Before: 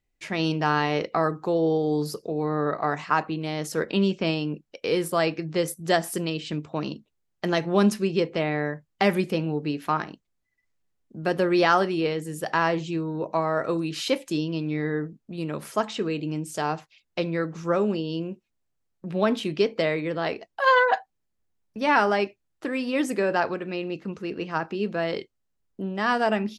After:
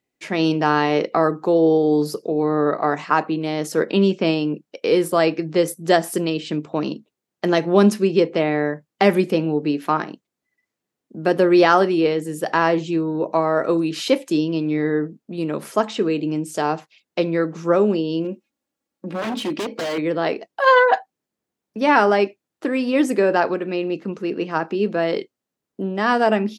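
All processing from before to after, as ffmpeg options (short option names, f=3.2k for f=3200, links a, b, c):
-filter_complex "[0:a]asettb=1/sr,asplit=3[a][b][c];[a]atrim=end=18.244[d];[b]atrim=start=18.24:end=19.98,asetpts=PTS-STARTPTS,afade=t=in:d=0.004:c=qsin,afade=t=out:st=1.736:d=0.004:c=qsin,aecho=1:1:3.6:0.58,atrim=end_sample=76734,acompressor=threshold=-23dB:ratio=2.5:attack=3.2:release=140:knee=1:detection=peak,aeval=exprs='0.0531*(abs(mod(val(0)/0.0531+3,4)-2)-1)':c=same[e];[c]atrim=start=19.976[f];[d][e]acrossfade=d=0.004:c1=hsin:c2=qsin[g];[g][f]acrossfade=d=0.004:c1=qsin:c2=hsin,highpass=270,lowshelf=f=450:g=10,volume=3dB"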